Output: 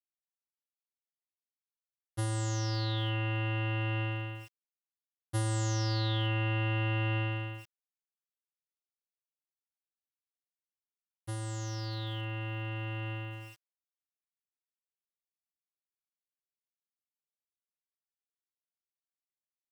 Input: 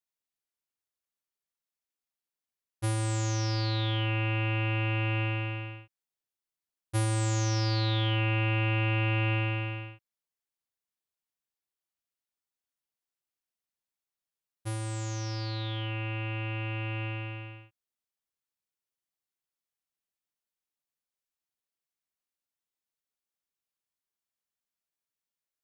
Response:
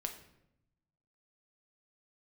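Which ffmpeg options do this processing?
-af "atempo=1.3,asuperstop=centerf=2400:order=8:qfactor=7,aeval=exprs='val(0)*gte(abs(val(0)),0.00398)':c=same,volume=0.708"

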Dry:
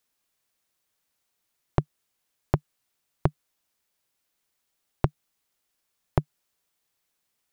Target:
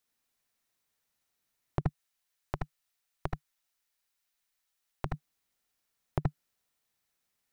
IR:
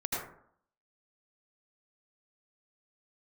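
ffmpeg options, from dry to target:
-filter_complex "[0:a]asettb=1/sr,asplit=3[s0][s1][s2];[s0]atrim=end=1.814[s3];[s1]atrim=start=1.81:end=5.06,asetpts=PTS-STARTPTS,afade=t=in:d=0.004:c=qsin,afade=t=out:st=3.246:d=0.004:c=qsin,equalizer=f=170:w=0.33:g=-12[s4];[s2]atrim=start=5.056[s5];[s3][s4]acrossfade=d=0.004:c1=hsin:c2=qsin[s6];[s6][s5]acrossfade=d=0.004:c1=qsin:c2=hsin[s7];[1:a]atrim=start_sample=2205,atrim=end_sample=3528[s8];[s7][s8]afir=irnorm=-1:irlink=0,alimiter=limit=0.335:level=0:latency=1:release=177,volume=0.708"

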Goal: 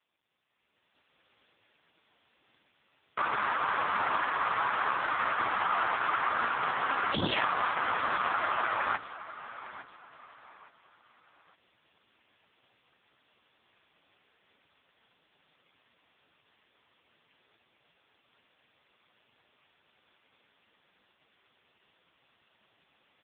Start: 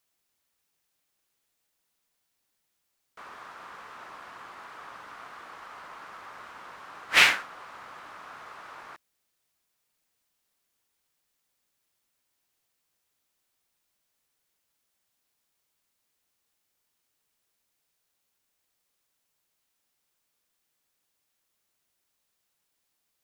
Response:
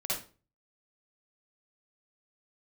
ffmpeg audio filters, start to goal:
-af "acontrast=23,afftfilt=real='re*lt(hypot(re,im),0.0891)':imag='im*lt(hypot(re,im),0.0891)':win_size=1024:overlap=0.75,aresample=11025,asoftclip=type=tanh:threshold=0.0282,aresample=44100,aecho=1:1:861|1722|2583:0.168|0.0554|0.0183,dynaudnorm=f=180:g=9:m=4.47,aeval=exprs='0.299*sin(PI/2*1.78*val(0)/0.299)':c=same,volume=0.562" -ar 8000 -c:a libopencore_amrnb -b:a 4750

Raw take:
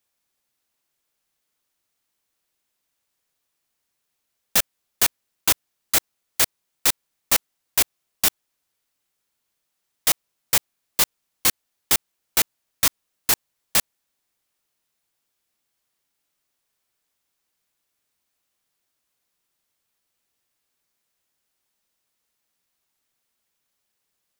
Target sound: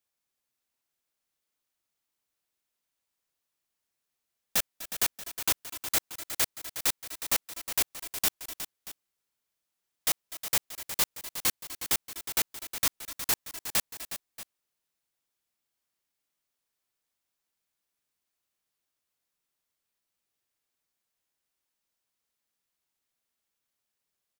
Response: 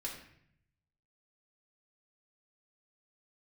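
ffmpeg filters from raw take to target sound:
-af "aecho=1:1:248|251|363|632:0.119|0.141|0.282|0.15,volume=0.398"

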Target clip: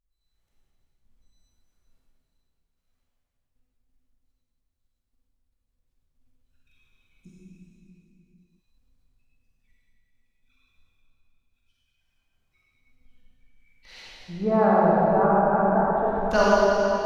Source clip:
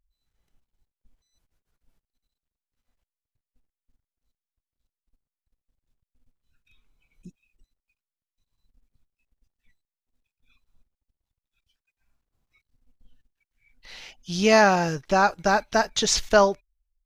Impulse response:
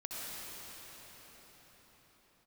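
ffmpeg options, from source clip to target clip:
-filter_complex "[0:a]asettb=1/sr,asplit=3[s0][s1][s2];[s0]atrim=end=14.024[s3];[s1]atrim=start=14.02:end=16.31,asetpts=PTS-STARTPTS,afade=t=in:d=0.004:c=qsin,afade=t=out:st=2.286:d=0.004:c=qsin,lowpass=f=1200:w=0.5412,lowpass=f=1200:w=1.3066[s4];[s2]atrim=start=16.306[s5];[s3][s4]acrossfade=d=0.004:c1=hsin:c2=qsin[s6];[s6][s5]acrossfade=d=0.004:c1=qsin:c2=hsin[s7];[1:a]atrim=start_sample=2205,asetrate=79380,aresample=44100[s8];[s7][s8]afir=irnorm=-1:irlink=0,volume=1.78"

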